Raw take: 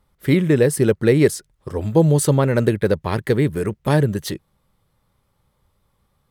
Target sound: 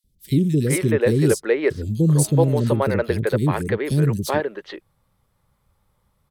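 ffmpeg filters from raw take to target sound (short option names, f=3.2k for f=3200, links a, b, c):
-filter_complex "[0:a]acrossover=split=360|3500[a][b][c];[a]adelay=40[d];[b]adelay=420[e];[d][e][c]amix=inputs=3:normalize=0"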